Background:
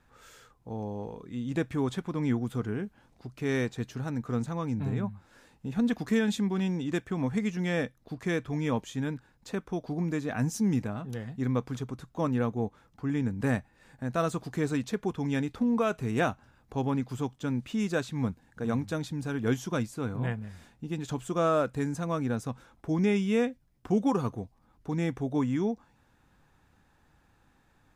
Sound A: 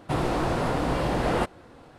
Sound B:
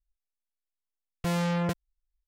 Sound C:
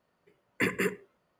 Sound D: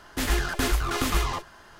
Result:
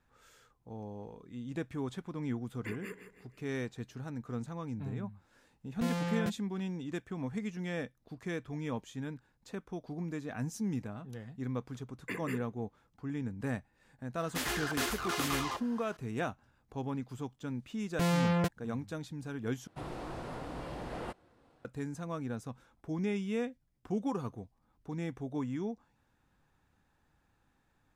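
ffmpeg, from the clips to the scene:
-filter_complex "[3:a]asplit=2[s0][s1];[2:a]asplit=2[s2][s3];[0:a]volume=0.398[s4];[s0]aecho=1:1:162|324|486|648:0.316|0.133|0.0558|0.0234[s5];[4:a]highpass=f=370:p=1[s6];[s4]asplit=2[s7][s8];[s7]atrim=end=19.674[s9];[1:a]atrim=end=1.98,asetpts=PTS-STARTPTS,volume=0.158[s10];[s8]atrim=start=21.646[s11];[s5]atrim=end=1.39,asetpts=PTS-STARTPTS,volume=0.158,afade=t=in:d=0.004:c=hsin,afade=t=out:st=1.386:d=0.004:c=hsin,adelay=2050[s12];[s2]atrim=end=2.27,asetpts=PTS-STARTPTS,volume=0.447,afade=t=in:d=0.004:c=hsin,afade=t=out:st=2.266:d=0.004:c=hsin,adelay=201537S[s13];[s1]atrim=end=1.39,asetpts=PTS-STARTPTS,volume=0.266,afade=t=in:d=0.004:c=hsin,afade=t=out:st=1.386:d=0.004:c=hsin,adelay=11480[s14];[s6]atrim=end=1.79,asetpts=PTS-STARTPTS,volume=0.531,afade=t=in:d=0.004:c=hsin,afade=t=out:st=1.786:d=0.004:c=hsin,adelay=14180[s15];[s3]atrim=end=2.27,asetpts=PTS-STARTPTS,volume=0.891,afade=t=in:d=0.004:c=hsin,afade=t=out:st=2.266:d=0.004:c=hsin,adelay=16750[s16];[s9][s10]acrossfade=d=0.004:c1=hsin:c2=hsin[s17];[s17][s11]acrossfade=d=0.004:c1=hsin:c2=hsin[s18];[s18][s12][s13][s14][s15][s16]amix=inputs=6:normalize=0"

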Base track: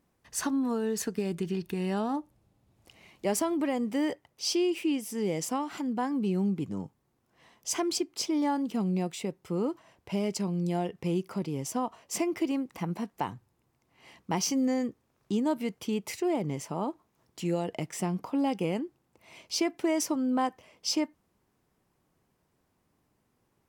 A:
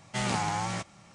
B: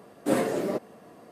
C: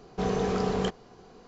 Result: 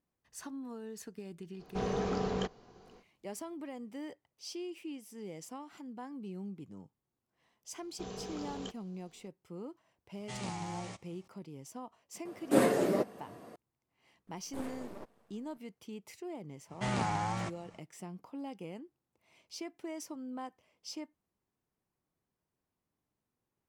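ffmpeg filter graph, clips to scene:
-filter_complex "[3:a]asplit=2[s0][s1];[1:a]asplit=2[s2][s3];[2:a]asplit=2[s4][s5];[0:a]volume=0.188[s6];[s0]aresample=16000,aresample=44100[s7];[s1]aexciter=amount=2:drive=7:freq=2800[s8];[s2]equalizer=f=1500:w=3:g=-7[s9];[s5]aeval=exprs='max(val(0),0)':c=same[s10];[s3]highshelf=f=2400:g=-9[s11];[s7]atrim=end=1.47,asetpts=PTS-STARTPTS,volume=0.501,afade=t=in:d=0.05,afade=t=out:st=1.42:d=0.05,adelay=1570[s12];[s8]atrim=end=1.47,asetpts=PTS-STARTPTS,volume=0.15,afade=t=in:d=0.004:c=hsin,afade=t=out:st=1.466:d=0.004:c=hsin,adelay=7810[s13];[s9]atrim=end=1.14,asetpts=PTS-STARTPTS,volume=0.266,afade=t=in:d=0.004:c=hsin,afade=t=out:st=1.136:d=0.004:c=hsin,adelay=10140[s14];[s4]atrim=end=1.31,asetpts=PTS-STARTPTS,volume=0.891,afade=t=in:d=0.004:c=hsin,afade=t=out:st=1.306:d=0.004:c=hsin,adelay=12250[s15];[s10]atrim=end=1.31,asetpts=PTS-STARTPTS,volume=0.178,afade=t=in:d=0.004:c=hsin,afade=t=out:st=1.306:d=0.004:c=hsin,adelay=14270[s16];[s11]atrim=end=1.14,asetpts=PTS-STARTPTS,volume=0.794,afade=t=in:d=0.05,afade=t=out:st=1.09:d=0.05,adelay=16670[s17];[s6][s12][s13][s14][s15][s16][s17]amix=inputs=7:normalize=0"

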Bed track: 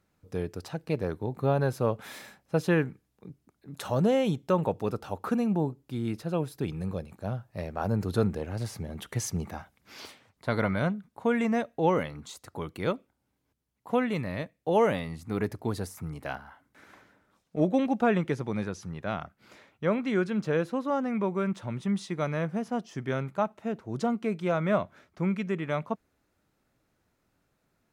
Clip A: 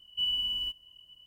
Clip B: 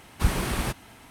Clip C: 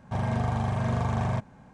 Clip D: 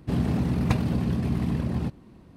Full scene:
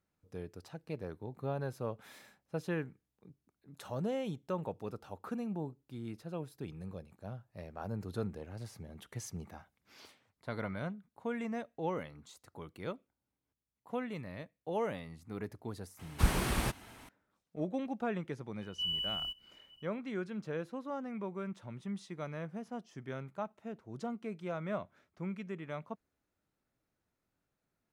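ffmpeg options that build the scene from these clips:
-filter_complex "[0:a]volume=0.266[s0];[2:a]atrim=end=1.1,asetpts=PTS-STARTPTS,volume=0.596,afade=t=in:d=0.004:c=hsin,afade=t=out:st=1.096:d=0.004:c=hsin,adelay=15990[s1];[1:a]atrim=end=1.26,asetpts=PTS-STARTPTS,volume=0.531,afade=t=in:d=0.004:c=hsin,afade=t=out:st=1.256:d=0.004:c=hsin,adelay=18610[s2];[s0][s1][s2]amix=inputs=3:normalize=0"

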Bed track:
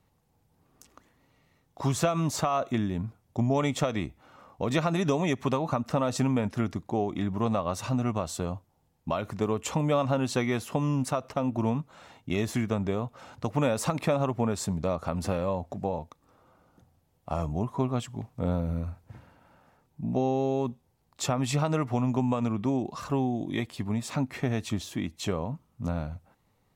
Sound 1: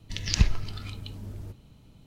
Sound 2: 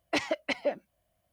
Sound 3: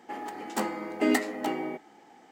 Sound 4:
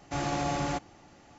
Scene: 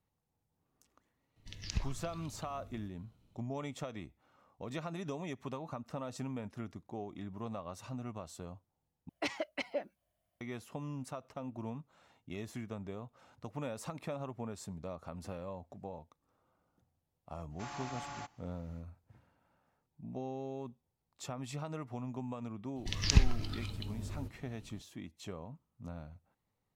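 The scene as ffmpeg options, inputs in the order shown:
-filter_complex "[1:a]asplit=2[s0][s1];[0:a]volume=0.188[s2];[4:a]lowshelf=f=660:t=q:w=1.5:g=-9[s3];[s2]asplit=2[s4][s5];[s4]atrim=end=9.094[s6];[2:a]atrim=end=1.32,asetpts=PTS-STARTPTS,volume=0.422[s7];[s5]atrim=start=10.406[s8];[s0]atrim=end=2.06,asetpts=PTS-STARTPTS,volume=0.188,afade=t=in:d=0.004:c=hsin,afade=t=out:st=2.056:d=0.004:c=hsin,adelay=1360[s9];[s3]atrim=end=1.38,asetpts=PTS-STARTPTS,volume=0.266,afade=t=in:d=0.1,afade=t=out:st=1.28:d=0.1,adelay=770868S[s10];[s1]atrim=end=2.06,asetpts=PTS-STARTPTS,volume=0.708,afade=t=in:d=0.004:c=hsin,afade=t=out:st=2.056:d=0.004:c=hsin,adelay=1003716S[s11];[s6][s7]acrossfade=d=0.004:c1=hsin:c2=hsin[s12];[s12][s8]acrossfade=d=0.004:c1=hsin:c2=hsin[s13];[s13][s9][s10][s11]amix=inputs=4:normalize=0"

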